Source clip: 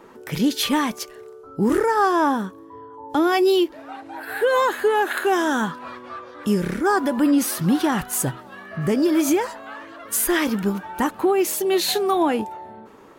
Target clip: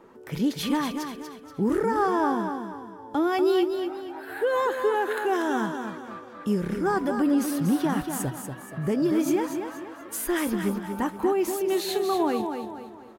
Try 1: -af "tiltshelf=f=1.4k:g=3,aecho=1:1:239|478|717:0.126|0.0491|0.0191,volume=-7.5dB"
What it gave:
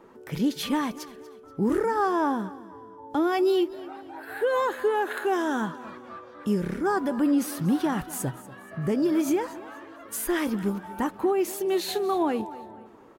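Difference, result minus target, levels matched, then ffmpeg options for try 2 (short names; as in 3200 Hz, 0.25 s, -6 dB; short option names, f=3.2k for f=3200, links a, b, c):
echo-to-direct -11 dB
-af "tiltshelf=f=1.4k:g=3,aecho=1:1:239|478|717|956|1195:0.447|0.174|0.0679|0.0265|0.0103,volume=-7.5dB"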